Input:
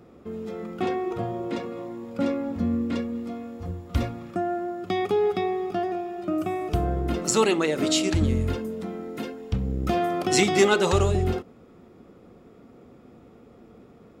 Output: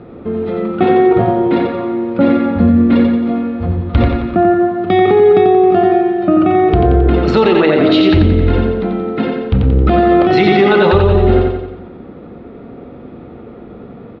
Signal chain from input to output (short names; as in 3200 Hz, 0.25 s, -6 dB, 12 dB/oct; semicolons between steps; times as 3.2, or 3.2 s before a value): elliptic low-pass 4100 Hz, stop band 70 dB; high shelf 2800 Hz -10 dB; notch 1100 Hz, Q 18; on a send: feedback echo 89 ms, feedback 52%, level -4.5 dB; on the sum: maximiser +17.5 dB; gain -1 dB